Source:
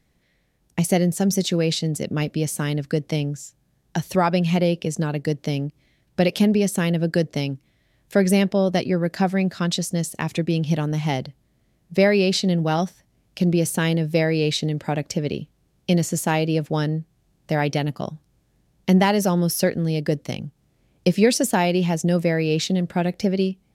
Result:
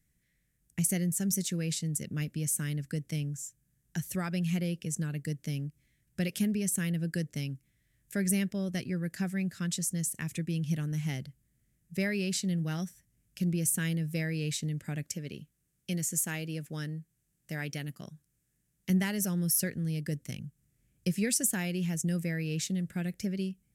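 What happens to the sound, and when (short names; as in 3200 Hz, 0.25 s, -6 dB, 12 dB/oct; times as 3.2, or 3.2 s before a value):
15.04–18.9 low shelf 150 Hz -10 dB
whole clip: EQ curve 150 Hz 0 dB, 890 Hz -17 dB, 1700 Hz -1 dB, 4200 Hz -7 dB, 7900 Hz +8 dB; gain -8 dB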